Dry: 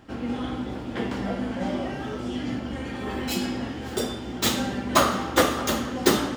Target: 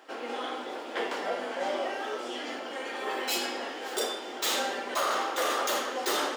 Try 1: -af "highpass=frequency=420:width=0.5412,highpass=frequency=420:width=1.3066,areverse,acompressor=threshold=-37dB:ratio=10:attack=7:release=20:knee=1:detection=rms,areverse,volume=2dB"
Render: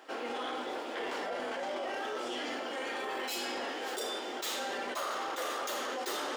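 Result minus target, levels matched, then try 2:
downward compressor: peak gain reduction +7.5 dB
-af "highpass=frequency=420:width=0.5412,highpass=frequency=420:width=1.3066,areverse,acompressor=threshold=-28.5dB:ratio=10:attack=7:release=20:knee=1:detection=rms,areverse,volume=2dB"

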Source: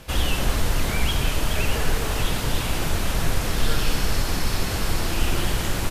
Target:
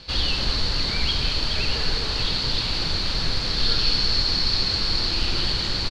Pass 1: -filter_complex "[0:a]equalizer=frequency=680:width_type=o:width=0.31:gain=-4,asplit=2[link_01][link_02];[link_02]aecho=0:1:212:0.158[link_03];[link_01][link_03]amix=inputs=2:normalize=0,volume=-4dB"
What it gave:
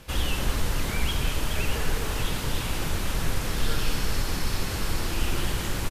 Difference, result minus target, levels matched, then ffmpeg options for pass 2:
4,000 Hz band −6.0 dB
-filter_complex "[0:a]lowpass=frequency=4400:width_type=q:width=13,equalizer=frequency=680:width_type=o:width=0.31:gain=-4,asplit=2[link_01][link_02];[link_02]aecho=0:1:212:0.158[link_03];[link_01][link_03]amix=inputs=2:normalize=0,volume=-4dB"

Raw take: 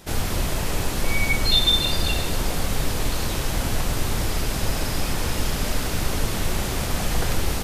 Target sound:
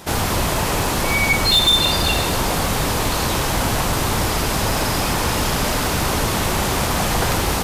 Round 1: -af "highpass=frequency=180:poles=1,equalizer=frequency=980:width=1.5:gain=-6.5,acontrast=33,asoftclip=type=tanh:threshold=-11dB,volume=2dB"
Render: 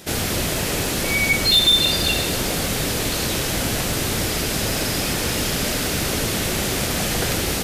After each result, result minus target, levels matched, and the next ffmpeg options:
1,000 Hz band −7.5 dB; 125 Hz band −2.5 dB
-af "highpass=frequency=180:poles=1,equalizer=frequency=980:width=1.5:gain=5.5,acontrast=33,asoftclip=type=tanh:threshold=-11dB,volume=2dB"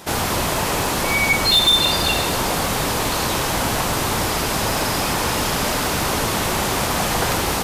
125 Hz band −3.5 dB
-af "highpass=frequency=74:poles=1,equalizer=frequency=980:width=1.5:gain=5.5,acontrast=33,asoftclip=type=tanh:threshold=-11dB,volume=2dB"

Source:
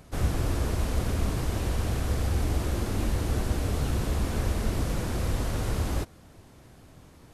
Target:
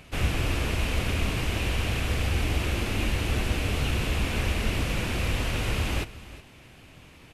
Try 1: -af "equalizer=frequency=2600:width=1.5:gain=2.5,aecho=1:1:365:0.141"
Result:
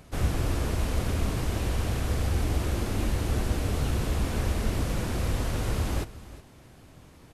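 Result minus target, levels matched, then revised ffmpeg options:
2,000 Hz band −6.5 dB
-af "equalizer=frequency=2600:width=1.5:gain=14.5,aecho=1:1:365:0.141"

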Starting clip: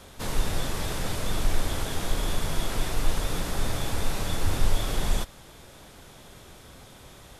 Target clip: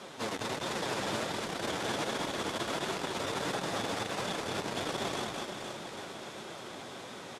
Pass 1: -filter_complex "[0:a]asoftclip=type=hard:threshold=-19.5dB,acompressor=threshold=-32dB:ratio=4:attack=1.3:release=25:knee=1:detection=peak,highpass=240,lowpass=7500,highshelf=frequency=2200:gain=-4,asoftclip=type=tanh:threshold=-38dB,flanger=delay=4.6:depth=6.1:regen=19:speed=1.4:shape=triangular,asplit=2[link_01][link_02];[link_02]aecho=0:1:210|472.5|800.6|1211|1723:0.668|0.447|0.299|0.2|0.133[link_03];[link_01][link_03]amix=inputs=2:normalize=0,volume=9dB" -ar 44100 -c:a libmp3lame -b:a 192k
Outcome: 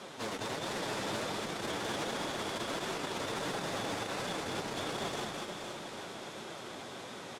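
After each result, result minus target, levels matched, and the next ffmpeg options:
soft clipping: distortion +16 dB; hard clipping: distortion −6 dB
-filter_complex "[0:a]asoftclip=type=hard:threshold=-19.5dB,acompressor=threshold=-32dB:ratio=4:attack=1.3:release=25:knee=1:detection=peak,highpass=240,lowpass=7500,highshelf=frequency=2200:gain=-4,asoftclip=type=tanh:threshold=-26.5dB,flanger=delay=4.6:depth=6.1:regen=19:speed=1.4:shape=triangular,asplit=2[link_01][link_02];[link_02]aecho=0:1:210|472.5|800.6|1211|1723:0.668|0.447|0.299|0.2|0.133[link_03];[link_01][link_03]amix=inputs=2:normalize=0,volume=9dB" -ar 44100 -c:a libmp3lame -b:a 192k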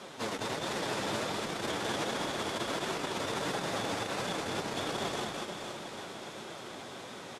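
hard clipping: distortion −6 dB
-filter_complex "[0:a]asoftclip=type=hard:threshold=-26dB,acompressor=threshold=-32dB:ratio=4:attack=1.3:release=25:knee=1:detection=peak,highpass=240,lowpass=7500,highshelf=frequency=2200:gain=-4,asoftclip=type=tanh:threshold=-26.5dB,flanger=delay=4.6:depth=6.1:regen=19:speed=1.4:shape=triangular,asplit=2[link_01][link_02];[link_02]aecho=0:1:210|472.5|800.6|1211|1723:0.668|0.447|0.299|0.2|0.133[link_03];[link_01][link_03]amix=inputs=2:normalize=0,volume=9dB" -ar 44100 -c:a libmp3lame -b:a 192k

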